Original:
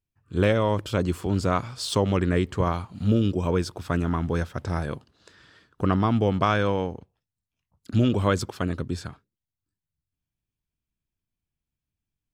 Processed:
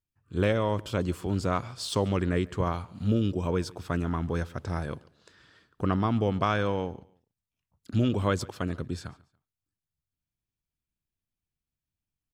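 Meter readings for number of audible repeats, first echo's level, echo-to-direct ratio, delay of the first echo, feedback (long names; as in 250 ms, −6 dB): 2, −23.5 dB, −23.0 dB, 142 ms, 32%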